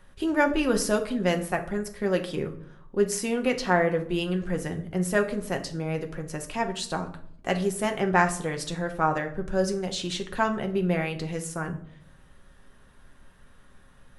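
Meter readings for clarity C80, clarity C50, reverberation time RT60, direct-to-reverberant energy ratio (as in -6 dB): 16.0 dB, 12.5 dB, 0.65 s, 4.0 dB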